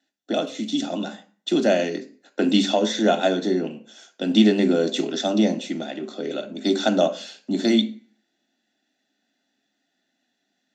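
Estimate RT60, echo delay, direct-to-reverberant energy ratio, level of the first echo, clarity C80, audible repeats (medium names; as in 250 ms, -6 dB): 0.40 s, no echo, 7.0 dB, no echo, 19.0 dB, no echo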